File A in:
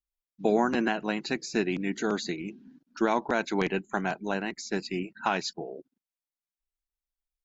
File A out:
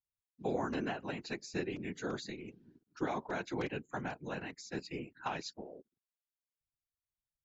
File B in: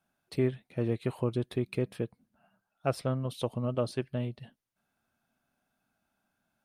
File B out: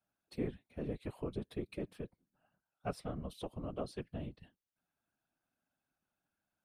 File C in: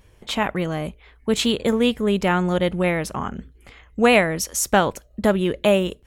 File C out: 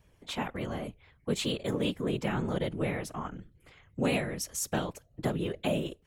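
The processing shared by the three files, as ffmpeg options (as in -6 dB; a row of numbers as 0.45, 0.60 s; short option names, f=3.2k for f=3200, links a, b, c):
-filter_complex "[0:a]afftfilt=real='hypot(re,im)*cos(2*PI*random(0))':imag='hypot(re,im)*sin(2*PI*random(1))':win_size=512:overlap=0.75,acrossover=split=400|3000[a][b][c];[b]acompressor=threshold=-29dB:ratio=6[d];[a][d][c]amix=inputs=3:normalize=0,volume=-4dB"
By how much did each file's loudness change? -10.5, -10.0, -12.0 LU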